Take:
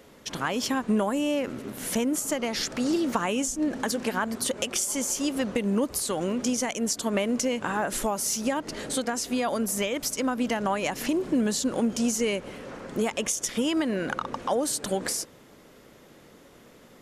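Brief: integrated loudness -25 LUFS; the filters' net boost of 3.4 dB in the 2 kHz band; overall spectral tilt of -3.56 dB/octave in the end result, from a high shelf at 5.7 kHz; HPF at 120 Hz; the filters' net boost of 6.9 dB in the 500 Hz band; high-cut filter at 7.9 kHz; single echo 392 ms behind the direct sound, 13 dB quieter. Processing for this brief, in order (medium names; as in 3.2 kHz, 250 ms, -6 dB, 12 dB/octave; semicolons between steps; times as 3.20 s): high-pass 120 Hz; low-pass 7.9 kHz; peaking EQ 500 Hz +8 dB; peaking EQ 2 kHz +5 dB; treble shelf 5.7 kHz -9 dB; delay 392 ms -13 dB; trim -0.5 dB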